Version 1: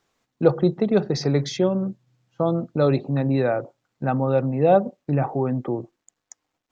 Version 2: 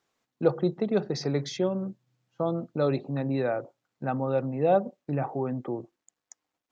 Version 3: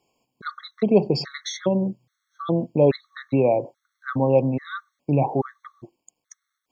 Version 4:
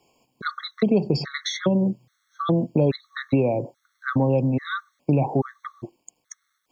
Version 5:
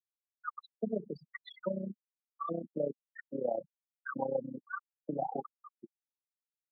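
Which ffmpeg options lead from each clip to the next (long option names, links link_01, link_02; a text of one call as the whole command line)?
ffmpeg -i in.wav -af "lowshelf=frequency=82:gain=-11,volume=-5.5dB" out.wav
ffmpeg -i in.wav -af "afftfilt=real='re*gt(sin(2*PI*1.2*pts/sr)*(1-2*mod(floor(b*sr/1024/1100),2)),0)':imag='im*gt(sin(2*PI*1.2*pts/sr)*(1-2*mod(floor(b*sr/1024/1100),2)),0)':win_size=1024:overlap=0.75,volume=9dB" out.wav
ffmpeg -i in.wav -filter_complex "[0:a]acrossover=split=290|4000[link_01][link_02][link_03];[link_01]acompressor=threshold=-27dB:ratio=4[link_04];[link_02]acompressor=threshold=-32dB:ratio=4[link_05];[link_03]acompressor=threshold=-44dB:ratio=4[link_06];[link_04][link_05][link_06]amix=inputs=3:normalize=0,volume=7dB" out.wav
ffmpeg -i in.wav -af "tremolo=f=31:d=0.788,afftfilt=real='re*gte(hypot(re,im),0.112)':imag='im*gte(hypot(re,im),0.112)':win_size=1024:overlap=0.75,highpass=frequency=240:width=0.5412,highpass=frequency=240:width=1.3066,equalizer=frequency=270:width_type=q:width=4:gain=-9,equalizer=frequency=390:width_type=q:width=4:gain=-9,equalizer=frequency=820:width_type=q:width=4:gain=4,equalizer=frequency=1400:width_type=q:width=4:gain=-3,equalizer=frequency=2200:width_type=q:width=4:gain=-8,lowpass=frequency=2700:width=0.5412,lowpass=frequency=2700:width=1.3066,volume=-5dB" out.wav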